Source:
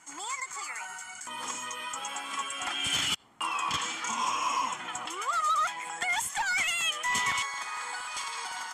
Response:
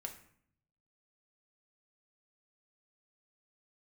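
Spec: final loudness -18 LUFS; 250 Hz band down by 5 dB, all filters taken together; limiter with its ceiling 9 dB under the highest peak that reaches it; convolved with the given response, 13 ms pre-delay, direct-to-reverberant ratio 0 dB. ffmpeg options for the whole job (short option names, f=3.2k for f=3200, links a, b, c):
-filter_complex "[0:a]equalizer=f=250:t=o:g=-6.5,alimiter=level_in=4dB:limit=-24dB:level=0:latency=1,volume=-4dB,asplit=2[a][b];[1:a]atrim=start_sample=2205,adelay=13[c];[b][c]afir=irnorm=-1:irlink=0,volume=2.5dB[d];[a][d]amix=inputs=2:normalize=0,volume=14.5dB"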